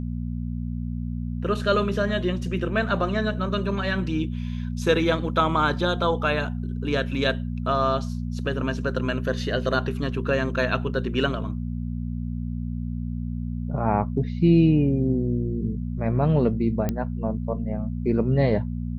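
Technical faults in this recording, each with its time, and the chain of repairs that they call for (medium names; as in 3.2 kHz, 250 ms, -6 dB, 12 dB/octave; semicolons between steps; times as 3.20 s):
hum 60 Hz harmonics 4 -29 dBFS
16.89 s: pop -12 dBFS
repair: de-click; de-hum 60 Hz, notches 4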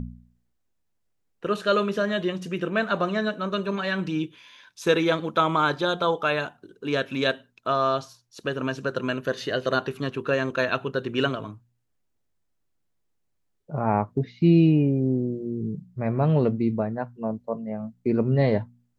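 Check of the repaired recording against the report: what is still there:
nothing left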